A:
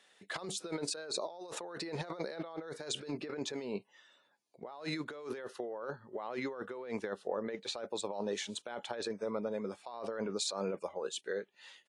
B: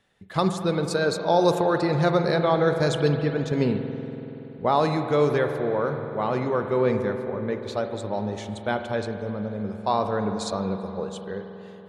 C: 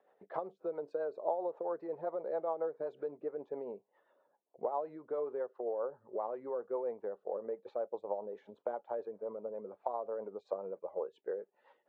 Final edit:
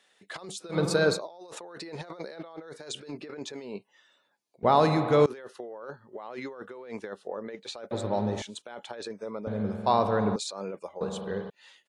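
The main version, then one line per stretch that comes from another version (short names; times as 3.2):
A
0.74–1.17 from B, crossfade 0.10 s
4.63–5.26 from B
7.91–8.42 from B
9.47–10.36 from B
11.01–11.5 from B
not used: C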